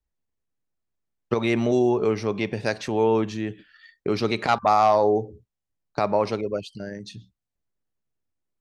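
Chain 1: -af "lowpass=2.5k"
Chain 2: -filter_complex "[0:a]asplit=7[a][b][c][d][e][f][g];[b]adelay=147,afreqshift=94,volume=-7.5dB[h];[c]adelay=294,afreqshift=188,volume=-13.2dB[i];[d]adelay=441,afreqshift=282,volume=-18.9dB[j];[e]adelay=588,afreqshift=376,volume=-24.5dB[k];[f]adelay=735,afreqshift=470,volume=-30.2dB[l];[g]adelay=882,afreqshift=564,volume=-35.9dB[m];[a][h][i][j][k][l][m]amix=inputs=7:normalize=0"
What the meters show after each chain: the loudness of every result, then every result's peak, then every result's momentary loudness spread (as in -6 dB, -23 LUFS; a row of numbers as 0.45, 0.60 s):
-23.5, -22.5 LUFS; -8.0, -6.0 dBFS; 16, 17 LU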